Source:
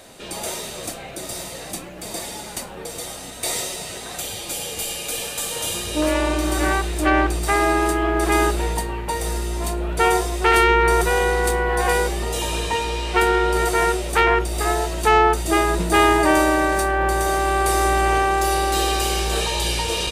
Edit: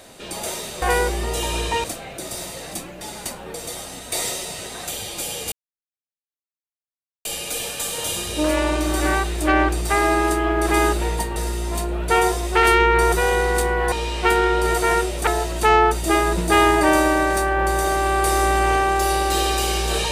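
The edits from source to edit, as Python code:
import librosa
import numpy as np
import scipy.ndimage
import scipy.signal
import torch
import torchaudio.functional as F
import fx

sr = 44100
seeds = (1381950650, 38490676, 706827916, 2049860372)

y = fx.edit(x, sr, fx.cut(start_s=1.99, length_s=0.33),
    fx.insert_silence(at_s=4.83, length_s=1.73),
    fx.cut(start_s=8.94, length_s=0.31),
    fx.move(start_s=11.81, length_s=1.02, to_s=0.82),
    fx.cut(start_s=14.18, length_s=0.51), tone=tone)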